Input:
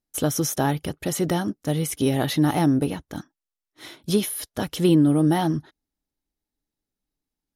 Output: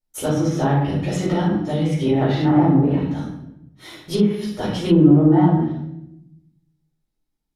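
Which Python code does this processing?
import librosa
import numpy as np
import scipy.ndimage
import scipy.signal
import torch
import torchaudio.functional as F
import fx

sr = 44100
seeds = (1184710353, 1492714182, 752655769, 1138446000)

y = fx.room_shoebox(x, sr, seeds[0], volume_m3=240.0, walls='mixed', distance_m=4.5)
y = fx.env_lowpass_down(y, sr, base_hz=1400.0, full_db=-2.0)
y = y * 10.0 ** (-9.5 / 20.0)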